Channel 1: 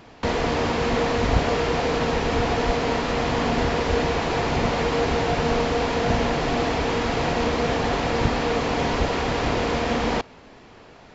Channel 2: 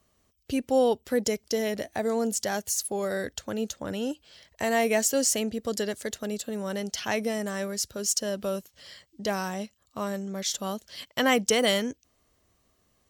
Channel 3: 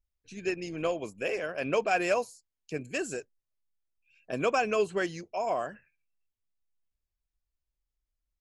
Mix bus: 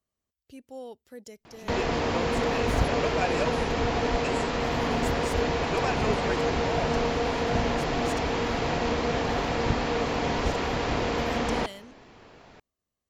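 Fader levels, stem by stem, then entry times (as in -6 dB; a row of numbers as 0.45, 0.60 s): -4.0, -18.5, -4.0 dB; 1.45, 0.00, 1.30 s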